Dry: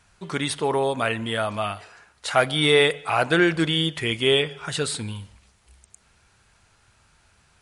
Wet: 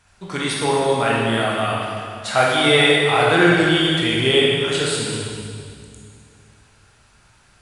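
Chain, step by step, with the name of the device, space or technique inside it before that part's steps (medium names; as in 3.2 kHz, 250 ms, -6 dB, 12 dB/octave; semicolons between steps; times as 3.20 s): stairwell (reverberation RT60 2.3 s, pre-delay 15 ms, DRR -4.5 dB)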